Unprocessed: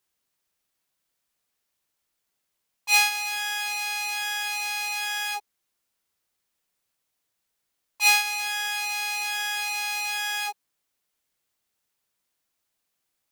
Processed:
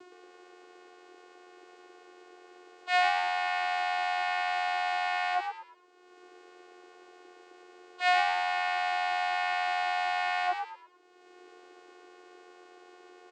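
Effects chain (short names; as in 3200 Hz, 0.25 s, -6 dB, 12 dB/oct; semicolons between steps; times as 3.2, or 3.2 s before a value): LPF 1000 Hz 6 dB/oct; upward compressor, threshold -52 dBFS; harmoniser +3 st -18 dB; power-law curve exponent 0.7; vocoder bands 8, saw 361 Hz; frequency-shifting echo 0.113 s, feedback 31%, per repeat +87 Hz, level -6 dB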